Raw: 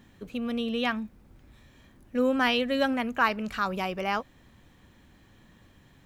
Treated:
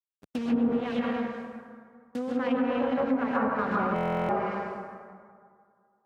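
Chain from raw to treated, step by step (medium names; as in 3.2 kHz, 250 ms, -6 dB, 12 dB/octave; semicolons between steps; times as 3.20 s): send-on-delta sampling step -32 dBFS; bass shelf 390 Hz +6 dB; compression 6:1, threshold -30 dBFS, peak gain reduction 12.5 dB; gate -34 dBFS, range -30 dB; plate-style reverb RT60 2.1 s, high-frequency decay 0.5×, pre-delay 115 ms, DRR -6 dB; 0.80–3.35 s: valve stage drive 21 dB, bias 0.7; high-pass 120 Hz 12 dB/octave; low-pass that closes with the level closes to 940 Hz, closed at -23 dBFS; buffer glitch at 3.94 s, samples 1024, times 14; trim +2.5 dB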